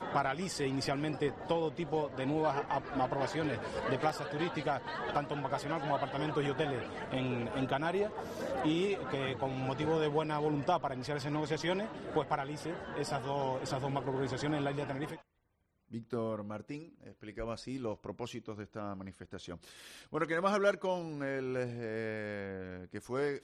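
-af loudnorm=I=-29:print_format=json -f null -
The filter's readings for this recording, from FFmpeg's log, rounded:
"input_i" : "-35.6",
"input_tp" : "-16.6",
"input_lra" : "7.2",
"input_thresh" : "-45.9",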